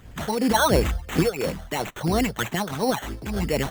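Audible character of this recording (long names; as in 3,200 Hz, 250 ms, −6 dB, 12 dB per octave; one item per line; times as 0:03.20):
phaser sweep stages 8, 2.9 Hz, lowest notch 280–1,900 Hz
aliases and images of a low sample rate 4,900 Hz, jitter 0%
amplitude modulation by smooth noise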